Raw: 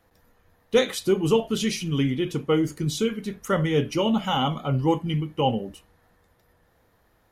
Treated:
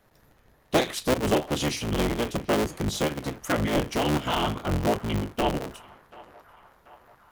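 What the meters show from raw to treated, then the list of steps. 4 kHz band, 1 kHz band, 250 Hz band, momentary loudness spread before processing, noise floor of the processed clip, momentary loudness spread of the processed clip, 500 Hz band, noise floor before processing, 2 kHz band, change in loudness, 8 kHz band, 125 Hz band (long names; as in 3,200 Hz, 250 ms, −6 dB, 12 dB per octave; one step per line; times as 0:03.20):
−1.5 dB, 0.0 dB, −3.0 dB, 5 LU, −61 dBFS, 4 LU, −3.0 dB, −64 dBFS, +2.0 dB, −2.0 dB, +1.0 dB, −3.5 dB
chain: sub-harmonics by changed cycles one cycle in 3, inverted
in parallel at −1 dB: downward compressor, threshold −30 dBFS, peak gain reduction 15.5 dB
on the sum: feedback echo with a band-pass in the loop 736 ms, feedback 71%, band-pass 1,200 Hz, level −19 dB
level −4.5 dB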